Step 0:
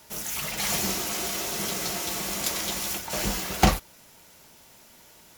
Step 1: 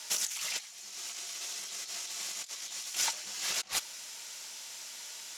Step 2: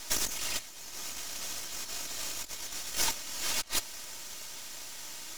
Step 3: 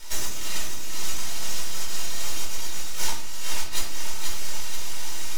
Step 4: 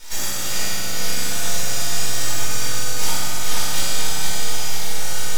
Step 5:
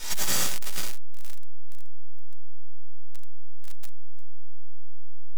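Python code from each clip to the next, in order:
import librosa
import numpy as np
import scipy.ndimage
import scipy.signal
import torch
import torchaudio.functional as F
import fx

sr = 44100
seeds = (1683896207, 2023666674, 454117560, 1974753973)

y1 = fx.weighting(x, sr, curve='ITU-R 468')
y1 = fx.over_compress(y1, sr, threshold_db=-29.0, ratio=-0.5)
y1 = fx.peak_eq(y1, sr, hz=10000.0, db=-3.5, octaves=0.38)
y1 = y1 * 10.0 ** (-6.5 / 20.0)
y2 = y1 + 0.91 * np.pad(y1, (int(3.2 * sr / 1000.0), 0))[:len(y1)]
y2 = np.maximum(y2, 0.0)
y2 = y2 * 10.0 ** (3.0 / 20.0)
y3 = fx.echo_feedback(y2, sr, ms=484, feedback_pct=45, wet_db=-10.5)
y3 = fx.room_shoebox(y3, sr, seeds[0], volume_m3=560.0, walls='furnished', distance_m=4.5)
y3 = fx.rider(y3, sr, range_db=4, speed_s=0.5)
y3 = y3 * 10.0 ** (-2.0 / 20.0)
y4 = fx.echo_filtered(y3, sr, ms=458, feedback_pct=61, hz=2000.0, wet_db=-6.0)
y4 = fx.rev_fdn(y4, sr, rt60_s=3.7, lf_ratio=1.0, hf_ratio=0.95, size_ms=12.0, drr_db=-7.5)
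y5 = np.clip(y4, -10.0 ** (-21.5 / 20.0), 10.0 ** (-21.5 / 20.0))
y5 = y5 * 10.0 ** (5.5 / 20.0)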